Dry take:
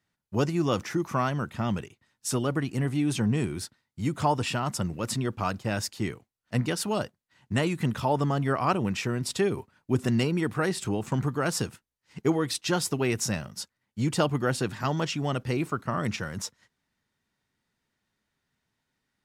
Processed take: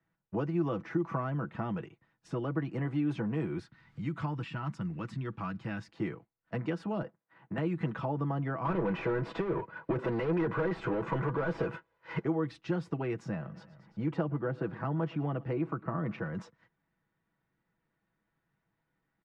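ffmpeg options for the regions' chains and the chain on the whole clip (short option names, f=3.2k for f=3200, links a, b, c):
-filter_complex "[0:a]asettb=1/sr,asplit=3[a][b][c];[a]atrim=end=3.594[d];[b]atrim=start=3.59:end=5.88,asetpts=PTS-STARTPTS,afade=t=in:d=0.004:c=qsin,afade=t=out:st=2.286:d=0.004:c=qsin,equalizer=f=540:t=o:w=1.8:g=-13,acompressor=mode=upward:threshold=-33dB:ratio=2.5:attack=3.2:release=140:knee=2.83:detection=peak[e];[c]atrim=start=5.876[f];[d][e]acrossfade=d=0.004:c1=hsin:c2=qsin[g];[g][f]acrossfade=d=0.004:c1=qsin:c2=hsin,asettb=1/sr,asplit=3[h][i][j];[h]atrim=end=7.024[k];[i]atrim=start=7.02:end=7.58,asetpts=PTS-STARTPTS,afade=t=in:d=0.004:c=qsin,afade=t=out:st=0.556:d=0.004:c=qsin,acompressor=threshold=-35dB:ratio=2:attack=3.2:release=140:knee=1:detection=peak,asplit=2[l][m];[m]highpass=f=720:p=1,volume=16dB,asoftclip=type=tanh:threshold=-19dB[n];[l][n]amix=inputs=2:normalize=0,lowpass=f=1k:p=1,volume=-6dB,highpass=57[o];[j]atrim=start=7.576[p];[k][o]acrossfade=d=0.004:c1=hsin:c2=qsin[q];[q][p]acrossfade=d=0.004:c1=qsin:c2=hsin,asettb=1/sr,asplit=3[r][s][t];[r]atrim=end=8.654[u];[s]atrim=start=8.65:end=12.25,asetpts=PTS-STARTPTS,afade=t=in:d=0.004:c=qsin,afade=t=out:st=3.596:d=0.004:c=qsin,aecho=1:1:2:0.54,atrim=end_sample=158760,asplit=2[v][w];[w]highpass=f=720:p=1,volume=32dB,asoftclip=type=tanh:threshold=-12.5dB[x];[v][x]amix=inputs=2:normalize=0,lowpass=f=1.6k:p=1,volume=-6dB[y];[t]atrim=start=12.246[z];[u][y]acrossfade=d=0.004:c1=hsin:c2=qsin[aa];[aa][z]acrossfade=d=0.004:c1=qsin:c2=hsin,asettb=1/sr,asplit=3[ab][ac][ad];[ab]atrim=end=13.314[ae];[ac]atrim=start=13.31:end=16.35,asetpts=PTS-STARTPTS,afade=t=in:d=0.004:c=qsin,afade=t=out:st=3.036:d=0.004:c=qsin,lowpass=f=1.8k:p=1,aecho=1:1:112|224|336:0.0668|0.0334|0.0167,atrim=end_sample=134064,acompressor=mode=upward:threshold=-39dB:ratio=2.5:attack=3.2:release=140:knee=2.83:detection=peak[af];[ad]atrim=start=16.346[ag];[ae][af]acrossfade=d=0.004:c1=hsin:c2=qsin[ah];[ah][ag]acrossfade=d=0.004:c1=qsin:c2=hsin,acrossover=split=160|340[ai][aj][ak];[ai]acompressor=threshold=-45dB:ratio=4[al];[aj]acompressor=threshold=-37dB:ratio=4[am];[ak]acompressor=threshold=-36dB:ratio=4[an];[al][am][an]amix=inputs=3:normalize=0,lowpass=1.7k,aecho=1:1:6.1:0.53"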